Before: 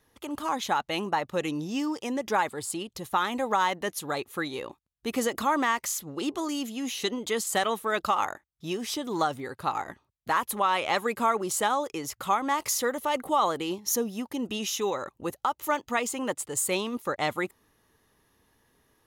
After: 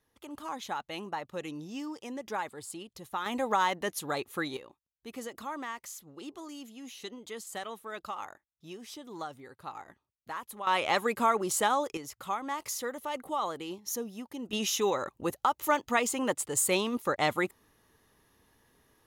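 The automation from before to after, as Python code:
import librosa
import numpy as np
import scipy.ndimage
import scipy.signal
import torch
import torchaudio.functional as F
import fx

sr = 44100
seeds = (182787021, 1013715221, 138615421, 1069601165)

y = fx.gain(x, sr, db=fx.steps((0.0, -9.0), (3.26, -2.0), (4.57, -13.0), (10.67, -1.0), (11.97, -8.0), (14.53, 0.5)))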